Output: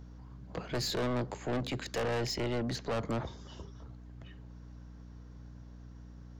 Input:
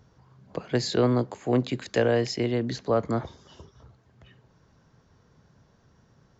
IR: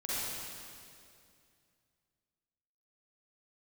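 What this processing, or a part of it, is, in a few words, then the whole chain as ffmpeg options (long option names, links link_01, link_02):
valve amplifier with mains hum: -af "aeval=exprs='(tanh(31.6*val(0)+0.15)-tanh(0.15))/31.6':channel_layout=same,aeval=exprs='val(0)+0.00398*(sin(2*PI*60*n/s)+sin(2*PI*2*60*n/s)/2+sin(2*PI*3*60*n/s)/3+sin(2*PI*4*60*n/s)/4+sin(2*PI*5*60*n/s)/5)':channel_layout=same"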